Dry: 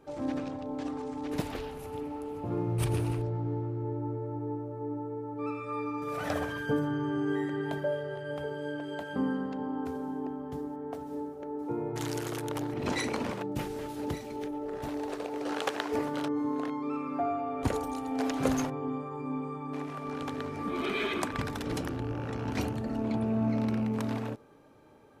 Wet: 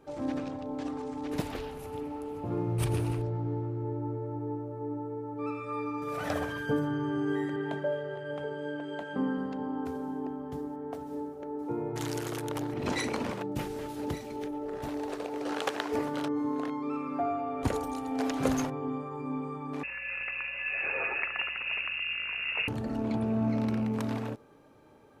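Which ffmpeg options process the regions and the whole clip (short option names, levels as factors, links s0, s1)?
-filter_complex "[0:a]asettb=1/sr,asplit=3[s0][s1][s2];[s0]atrim=end=7.564[s3];[s1]atrim=start=7.56:end=9.38,asetpts=PTS-STARTPTS,afade=t=in:d=0.004:c=qsin,afade=t=out:st=1.816:d=0.004:c=qsin,highpass=130,lowpass=7000,equalizer=f=4900:t=o:w=0.61:g=-5.5[s4];[s2]atrim=start=9.376[s5];[s3][s4]acrossfade=d=0.004:c1=hsin:c2=qsin[s6];[s6][s5]acrossfade=d=0.004:c1=qsin:c2=hsin,asettb=1/sr,asplit=3[s7][s8][s9];[s7]atrim=end=19.834[s10];[s8]atrim=start=19.83:end=22.68,asetpts=PTS-STARTPTS,afade=t=in:d=0.004:c=qsin,afade=t=out:st=2.846:d=0.004:c=qsin,lowpass=f=2500:t=q:w=0.5098,lowpass=f=2500:t=q:w=0.6013,lowpass=f=2500:t=q:w=0.9,lowpass=f=2500:t=q:w=2.563,afreqshift=-2900,aeval=exprs='val(0)+0.000891*(sin(2*PI*60*n/s)+sin(2*PI*2*60*n/s)/2+sin(2*PI*3*60*n/s)/3+sin(2*PI*4*60*n/s)/4+sin(2*PI*5*60*n/s)/5)':c=same[s11];[s9]atrim=start=22.676[s12];[s10][s11]acrossfade=d=0.004:c1=hsin:c2=qsin[s13];[s13][s12]acrossfade=d=0.004:c1=qsin:c2=hsin"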